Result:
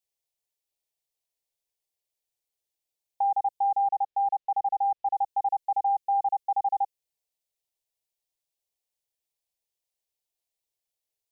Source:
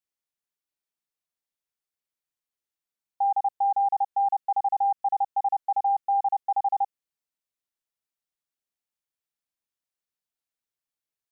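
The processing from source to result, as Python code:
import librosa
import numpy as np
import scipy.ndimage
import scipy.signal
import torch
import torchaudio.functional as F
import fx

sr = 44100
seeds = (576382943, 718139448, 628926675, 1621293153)

y = fx.air_absorb(x, sr, metres=170.0, at=(3.88, 5.17))
y = fx.fixed_phaser(y, sr, hz=560.0, stages=4)
y = fx.dynamic_eq(y, sr, hz=650.0, q=2.1, threshold_db=-40.0, ratio=4.0, max_db=-6)
y = F.gain(torch.from_numpy(y), 4.5).numpy()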